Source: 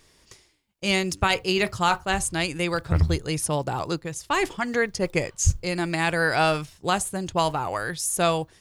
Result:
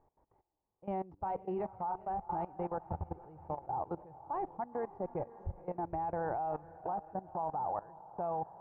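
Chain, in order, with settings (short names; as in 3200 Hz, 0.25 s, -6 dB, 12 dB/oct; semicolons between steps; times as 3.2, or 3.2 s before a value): ladder low-pass 890 Hz, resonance 75%; 2.85–3.73 compressor 5:1, threshold -35 dBFS, peak gain reduction 9 dB; diffused feedback echo 0.482 s, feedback 51%, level -12 dB; level quantiser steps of 18 dB; gain +1 dB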